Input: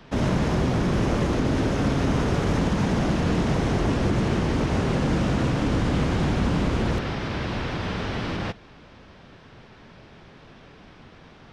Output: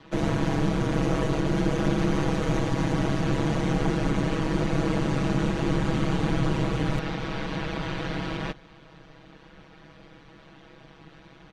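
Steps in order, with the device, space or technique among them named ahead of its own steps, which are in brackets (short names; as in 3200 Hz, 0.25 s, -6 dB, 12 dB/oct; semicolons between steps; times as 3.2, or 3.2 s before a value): notch 5200 Hz, Q 11; ring-modulated robot voice (ring modulator 71 Hz; comb 6.2 ms, depth 99%); gain -2 dB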